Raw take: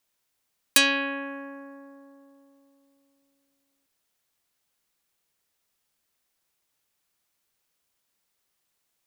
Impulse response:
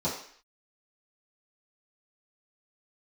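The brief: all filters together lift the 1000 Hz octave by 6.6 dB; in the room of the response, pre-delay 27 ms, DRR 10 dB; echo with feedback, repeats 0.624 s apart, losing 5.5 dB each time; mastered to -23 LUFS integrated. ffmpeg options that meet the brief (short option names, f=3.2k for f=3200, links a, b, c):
-filter_complex "[0:a]equalizer=f=1k:t=o:g=7.5,aecho=1:1:624|1248|1872|2496|3120|3744|4368:0.531|0.281|0.149|0.079|0.0419|0.0222|0.0118,asplit=2[a][b];[1:a]atrim=start_sample=2205,adelay=27[c];[b][c]afir=irnorm=-1:irlink=0,volume=-18.5dB[d];[a][d]amix=inputs=2:normalize=0,volume=1.5dB"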